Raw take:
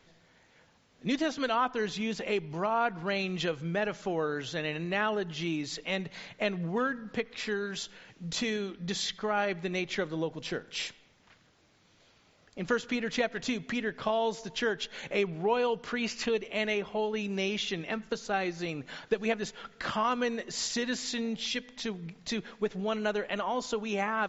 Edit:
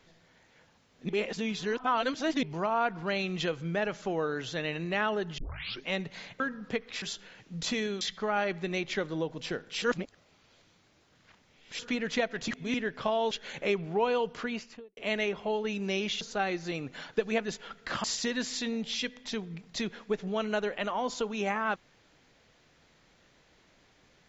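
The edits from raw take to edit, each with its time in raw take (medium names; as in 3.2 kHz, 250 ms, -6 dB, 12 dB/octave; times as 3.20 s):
1.09–2.43 s: reverse
5.38 s: tape start 0.49 s
6.40–6.84 s: delete
7.46–7.72 s: delete
8.71–9.02 s: delete
10.83–12.80 s: reverse
13.49–13.75 s: reverse
14.32–14.80 s: delete
15.81–16.46 s: studio fade out
17.70–18.15 s: delete
19.98–20.56 s: delete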